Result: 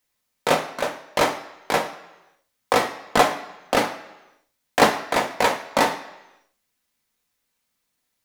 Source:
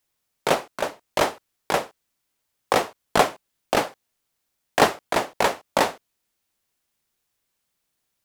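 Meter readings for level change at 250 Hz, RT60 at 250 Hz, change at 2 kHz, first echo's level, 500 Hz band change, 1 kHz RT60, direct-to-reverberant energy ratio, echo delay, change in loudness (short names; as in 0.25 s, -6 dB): +2.5 dB, 0.85 s, +2.5 dB, none, +1.0 dB, 1.0 s, 1.5 dB, none, +1.5 dB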